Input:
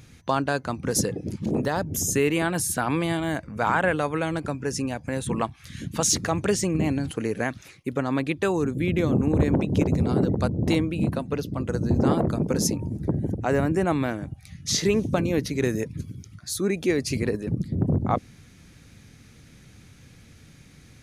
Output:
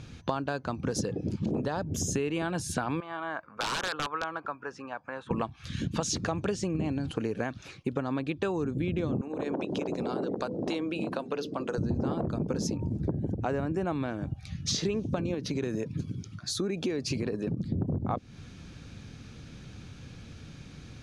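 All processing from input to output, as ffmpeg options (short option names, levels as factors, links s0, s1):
-filter_complex "[0:a]asettb=1/sr,asplit=3[s0][s1][s2];[s0]atrim=end=3.004[s3];[s1]atrim=start=3:end=5.31,asetpts=PTS-STARTPTS,afade=t=in:d=0.004:c=qsin,afade=t=out:st=2.306:d=0.004:c=qsin,bandpass=f=1200:t=q:w=2.4,aeval=exprs='(mod(15*val(0)+1,2)-1)/15':c=same[s4];[s2]atrim=start=5.306[s5];[s3][s4]acrossfade=d=0.004:c1=hsin:c2=qsin[s6];[s6][s5]acrossfade=d=0.004:c1=qsin:c2=hsin,asettb=1/sr,asplit=3[s7][s8][s9];[s7]atrim=end=9.214[s10];[s8]atrim=start=9.21:end=11.78,asetpts=PTS-STARTPTS,afade=t=in:d=0.004:c=qsin,afade=t=out:st=2.566:d=0.004:c=qsin,highpass=350,bandreject=f=50:t=h:w=6,bandreject=f=100:t=h:w=6,bandreject=f=150:t=h:w=6,bandreject=f=200:t=h:w=6,bandreject=f=250:t=h:w=6,bandreject=f=300:t=h:w=6,bandreject=f=350:t=h:w=6,bandreject=f=400:t=h:w=6,bandreject=f=450:t=h:w=6,bandreject=f=500:t=h:w=6,acompressor=threshold=0.0316:ratio=2.5:attack=3.2:release=140:knee=1:detection=peak[s11];[s9]atrim=start=11.776[s12];[s10][s11]acrossfade=d=0.004:c1=hsin:c2=qsin[s13];[s13][s12]acrossfade=d=0.004:c1=qsin:c2=hsin,asettb=1/sr,asplit=3[s14][s15][s16];[s14]atrim=end=15.344[s17];[s15]atrim=start=15.34:end=17.63,asetpts=PTS-STARTPTS,afade=t=in:d=0.004:c=qsin,afade=t=out:st=2.286:d=0.004:c=qsin,highpass=110,acompressor=threshold=0.0501:ratio=2.5:attack=3.2:release=140:knee=1:detection=peak[s18];[s16]atrim=start=17.626[s19];[s17][s18]acrossfade=d=0.004:c1=hsin:c2=qsin[s20];[s20][s19]acrossfade=d=0.004:c1=qsin:c2=hsin,lowpass=5100,equalizer=f=2000:w=5.3:g=-9.5,acompressor=threshold=0.0251:ratio=6,volume=1.68"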